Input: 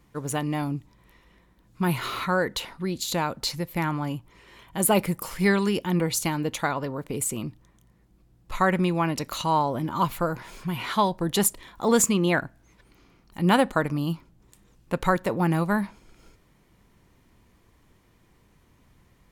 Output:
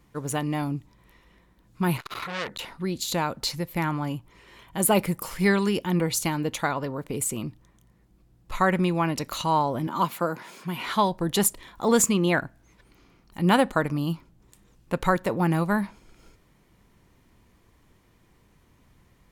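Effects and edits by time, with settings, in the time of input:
0:01.97–0:02.59: saturating transformer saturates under 3,200 Hz
0:09.87–0:10.86: high-pass filter 170 Hz 24 dB per octave

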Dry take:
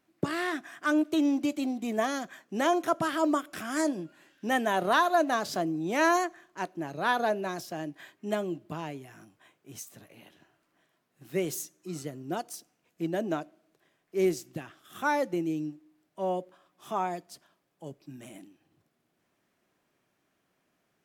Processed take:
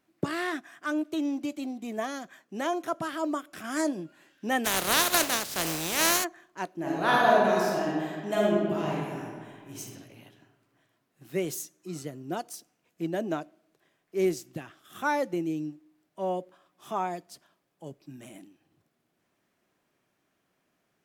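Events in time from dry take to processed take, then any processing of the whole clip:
0:00.60–0:03.64: clip gain −4 dB
0:04.64–0:06.23: compressing power law on the bin magnitudes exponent 0.33
0:06.75–0:09.79: thrown reverb, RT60 1.8 s, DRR −5.5 dB

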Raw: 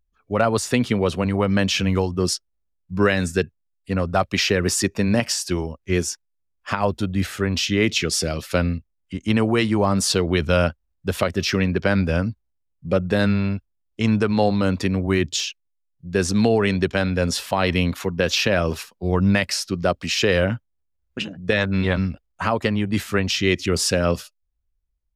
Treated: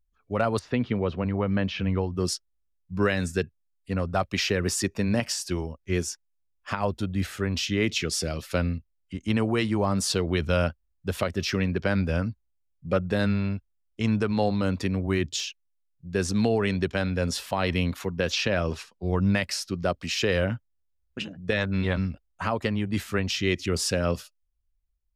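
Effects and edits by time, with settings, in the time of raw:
0:00.59–0:02.15: high-frequency loss of the air 290 metres
0:12.20–0:13.00: dynamic equaliser 1,500 Hz, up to +6 dB, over −39 dBFS, Q 0.81
0:18.32–0:19.08: low-pass filter 8,000 Hz
whole clip: low-shelf EQ 65 Hz +6 dB; level −6 dB

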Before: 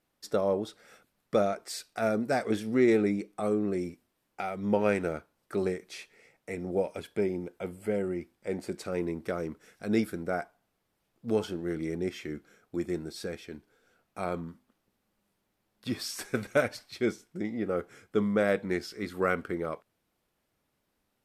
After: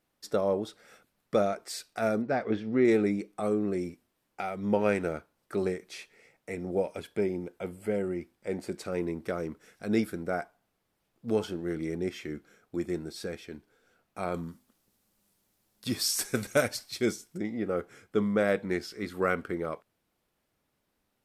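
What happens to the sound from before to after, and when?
0:02.22–0:02.85: high-frequency loss of the air 230 metres
0:14.34–0:17.38: bass and treble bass +2 dB, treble +11 dB

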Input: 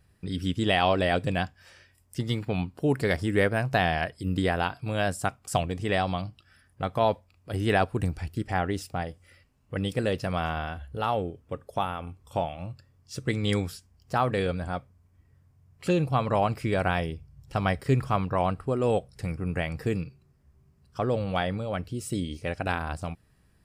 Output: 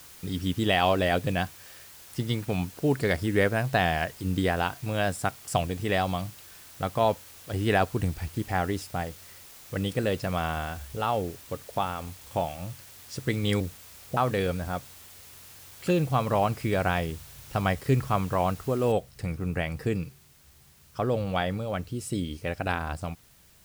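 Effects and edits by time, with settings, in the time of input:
0:13.60–0:14.17: Butterworth low-pass 650 Hz 48 dB per octave
0:18.92: noise floor change −49 dB −59 dB

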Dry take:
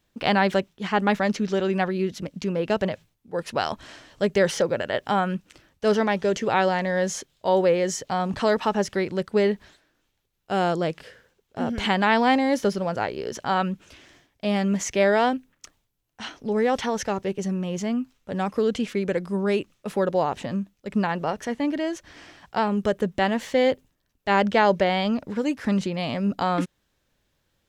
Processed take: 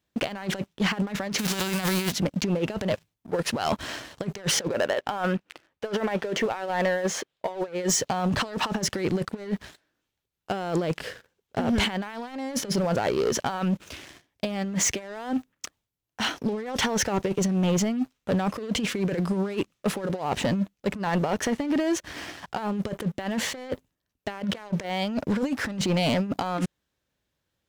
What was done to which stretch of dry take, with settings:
0:01.37–0:02.11: spectral envelope flattened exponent 0.3
0:04.68–0:07.68: bass and treble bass −11 dB, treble −12 dB
whole clip: high-pass filter 47 Hz; compressor whose output falls as the input rises −28 dBFS, ratio −0.5; leveller curve on the samples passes 3; level −7 dB

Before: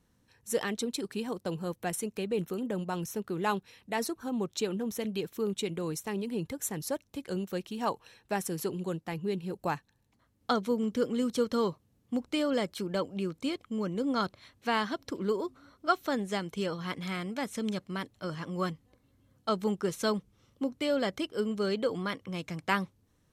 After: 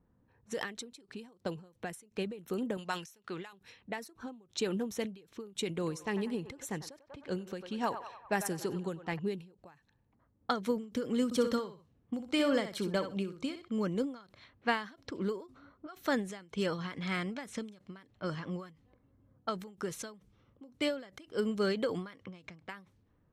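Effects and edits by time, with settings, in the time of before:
0:02.77–0:03.53: tilt shelving filter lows −9 dB, about 850 Hz
0:05.67–0:09.19: feedback echo with a band-pass in the loop 96 ms, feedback 63%, band-pass 1,100 Hz, level −10 dB
0:11.25–0:13.74: repeating echo 62 ms, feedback 15%, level −8 dB
whole clip: low-pass that shuts in the quiet parts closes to 1,100 Hz, open at −29 dBFS; dynamic equaliser 1,800 Hz, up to +5 dB, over −48 dBFS, Q 2.4; every ending faded ahead of time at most 130 dB per second

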